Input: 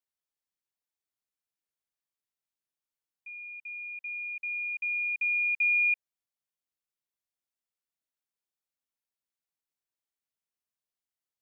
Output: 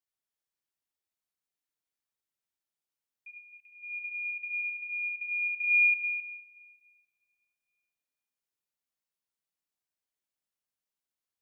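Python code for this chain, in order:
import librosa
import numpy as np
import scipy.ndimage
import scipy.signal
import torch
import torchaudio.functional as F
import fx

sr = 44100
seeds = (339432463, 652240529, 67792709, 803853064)

p1 = fx.notch(x, sr, hz=2400.0, q=8.6, at=(3.3, 3.82), fade=0.02)
p2 = fx.high_shelf(p1, sr, hz=2300.0, db=-10.0, at=(4.61, 5.64))
p3 = p2 + fx.echo_multitap(p2, sr, ms=(72, 100, 264), db=(-5.5, -6.5, -5.5), dry=0)
p4 = fx.rev_plate(p3, sr, seeds[0], rt60_s=2.3, hf_ratio=0.9, predelay_ms=0, drr_db=14.0)
y = p4 * librosa.db_to_amplitude(-3.0)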